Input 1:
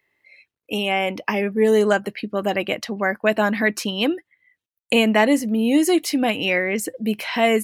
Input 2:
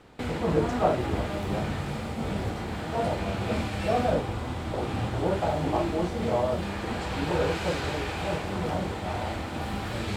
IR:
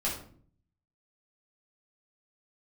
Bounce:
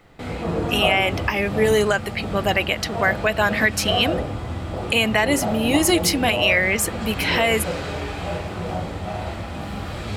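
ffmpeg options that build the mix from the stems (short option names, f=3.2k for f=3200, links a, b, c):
-filter_complex "[0:a]tiltshelf=f=670:g=-6,volume=1dB[a];[1:a]volume=-4dB,asplit=2[b][c];[c]volume=-4.5dB[d];[2:a]atrim=start_sample=2205[e];[d][e]afir=irnorm=-1:irlink=0[f];[a][b][f]amix=inputs=3:normalize=0,alimiter=limit=-6.5dB:level=0:latency=1:release=186"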